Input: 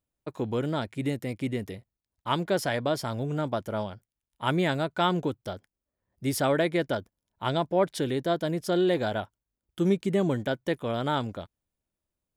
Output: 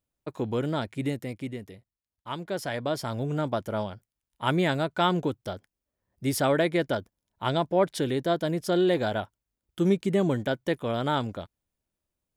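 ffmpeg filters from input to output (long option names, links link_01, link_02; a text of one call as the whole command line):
ffmpeg -i in.wav -af "volume=9dB,afade=type=out:start_time=1.01:duration=0.63:silence=0.398107,afade=type=in:start_time=2.4:duration=0.86:silence=0.375837" out.wav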